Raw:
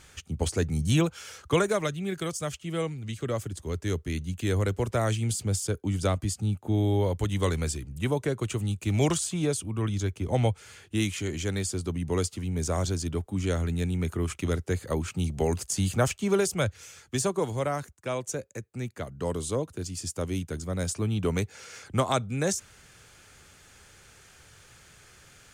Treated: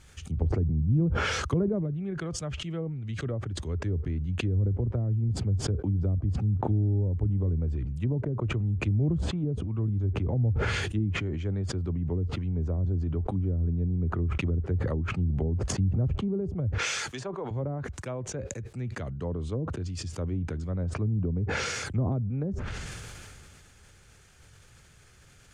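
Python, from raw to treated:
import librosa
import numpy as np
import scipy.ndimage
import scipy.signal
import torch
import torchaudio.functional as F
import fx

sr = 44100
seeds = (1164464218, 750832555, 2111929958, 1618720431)

y = fx.weighting(x, sr, curve='A', at=(16.78, 17.51))
y = fx.env_lowpass_down(y, sr, base_hz=320.0, full_db=-23.0)
y = fx.low_shelf(y, sr, hz=190.0, db=9.5)
y = fx.sustainer(y, sr, db_per_s=21.0)
y = F.gain(torch.from_numpy(y), -6.0).numpy()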